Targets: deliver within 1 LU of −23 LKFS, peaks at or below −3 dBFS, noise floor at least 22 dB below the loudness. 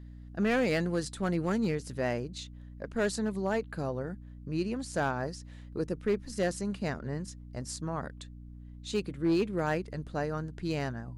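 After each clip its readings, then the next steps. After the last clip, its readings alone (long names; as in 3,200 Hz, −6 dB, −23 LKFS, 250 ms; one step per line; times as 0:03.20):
share of clipped samples 0.7%; peaks flattened at −21.5 dBFS; mains hum 60 Hz; hum harmonics up to 300 Hz; level of the hum −45 dBFS; integrated loudness −33.0 LKFS; sample peak −21.5 dBFS; target loudness −23.0 LKFS
→ clipped peaks rebuilt −21.5 dBFS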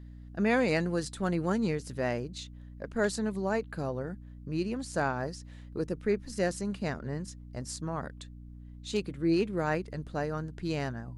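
share of clipped samples 0.0%; mains hum 60 Hz; hum harmonics up to 300 Hz; level of the hum −45 dBFS
→ mains-hum notches 60/120/180/240/300 Hz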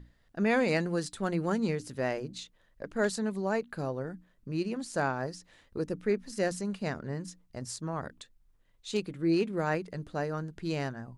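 mains hum none found; integrated loudness −32.5 LKFS; sample peak −14.5 dBFS; target loudness −23.0 LKFS
→ level +9.5 dB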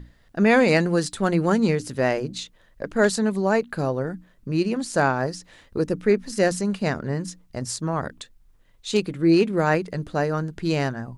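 integrated loudness −23.0 LKFS; sample peak −5.0 dBFS; background noise floor −57 dBFS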